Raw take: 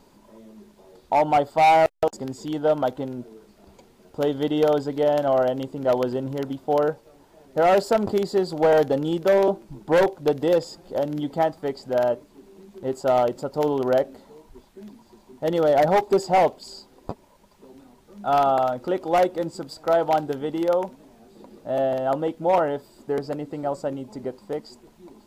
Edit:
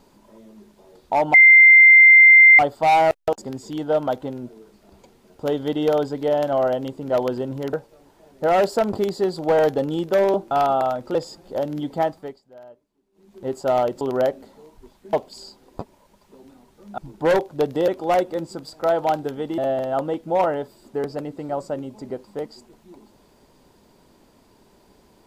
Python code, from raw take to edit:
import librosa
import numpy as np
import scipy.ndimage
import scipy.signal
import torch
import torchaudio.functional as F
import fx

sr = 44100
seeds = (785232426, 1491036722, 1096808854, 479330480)

y = fx.edit(x, sr, fx.insert_tone(at_s=1.34, length_s=1.25, hz=2090.0, db=-6.0),
    fx.cut(start_s=6.48, length_s=0.39),
    fx.swap(start_s=9.65, length_s=0.9, other_s=18.28, other_length_s=0.64),
    fx.fade_down_up(start_s=11.48, length_s=1.37, db=-22.5, fade_s=0.33),
    fx.cut(start_s=13.41, length_s=0.32),
    fx.cut(start_s=14.85, length_s=1.58),
    fx.cut(start_s=20.62, length_s=1.1), tone=tone)